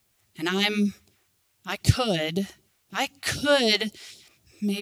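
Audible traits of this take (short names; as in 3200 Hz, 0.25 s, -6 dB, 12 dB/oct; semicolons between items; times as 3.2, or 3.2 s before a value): phasing stages 2, 3.9 Hz, lowest notch 130–1800 Hz; a quantiser's noise floor 12-bit, dither triangular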